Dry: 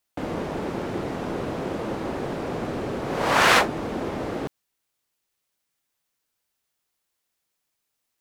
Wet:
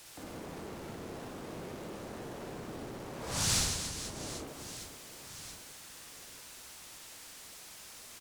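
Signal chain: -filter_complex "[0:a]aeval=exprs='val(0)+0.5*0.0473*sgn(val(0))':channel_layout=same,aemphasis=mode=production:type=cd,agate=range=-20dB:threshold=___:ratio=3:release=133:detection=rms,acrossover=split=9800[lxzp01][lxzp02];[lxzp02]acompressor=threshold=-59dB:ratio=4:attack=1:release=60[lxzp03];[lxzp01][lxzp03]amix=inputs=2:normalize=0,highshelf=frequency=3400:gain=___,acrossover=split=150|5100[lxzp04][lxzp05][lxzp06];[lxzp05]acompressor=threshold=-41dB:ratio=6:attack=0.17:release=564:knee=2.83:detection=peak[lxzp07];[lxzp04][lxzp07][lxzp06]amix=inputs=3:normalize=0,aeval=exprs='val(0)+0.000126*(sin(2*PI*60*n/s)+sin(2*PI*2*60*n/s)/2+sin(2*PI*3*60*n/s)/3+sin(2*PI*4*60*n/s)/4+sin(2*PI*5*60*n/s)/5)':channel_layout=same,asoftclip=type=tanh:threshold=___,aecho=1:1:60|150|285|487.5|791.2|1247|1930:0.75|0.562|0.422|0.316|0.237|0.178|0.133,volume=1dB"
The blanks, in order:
-15dB, -5, -24.5dB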